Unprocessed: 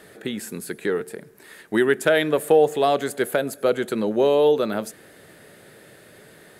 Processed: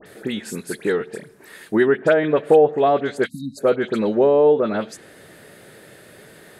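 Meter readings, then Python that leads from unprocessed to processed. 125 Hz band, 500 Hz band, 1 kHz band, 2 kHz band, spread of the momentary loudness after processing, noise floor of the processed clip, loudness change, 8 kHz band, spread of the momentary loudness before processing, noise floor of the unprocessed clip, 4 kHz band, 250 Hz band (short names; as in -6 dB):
+3.0 dB, +3.0 dB, +2.5 dB, 0.0 dB, 14 LU, -47 dBFS, +2.5 dB, n/a, 14 LU, -50 dBFS, -4.0 dB, +3.0 dB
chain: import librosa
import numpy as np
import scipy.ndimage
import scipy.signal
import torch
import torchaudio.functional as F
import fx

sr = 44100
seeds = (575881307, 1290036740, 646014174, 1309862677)

y = fx.env_lowpass_down(x, sr, base_hz=1300.0, full_db=-14.0)
y = fx.spec_erase(y, sr, start_s=3.26, length_s=0.31, low_hz=300.0, high_hz=3700.0)
y = fx.dispersion(y, sr, late='highs', ms=62.0, hz=2400.0)
y = y * 10.0 ** (3.0 / 20.0)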